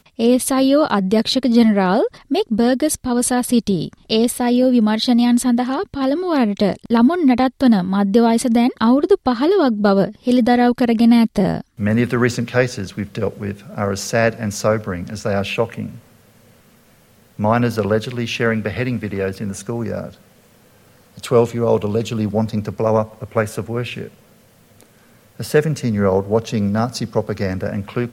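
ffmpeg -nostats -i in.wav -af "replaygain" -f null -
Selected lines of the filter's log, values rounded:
track_gain = -2.3 dB
track_peak = 0.572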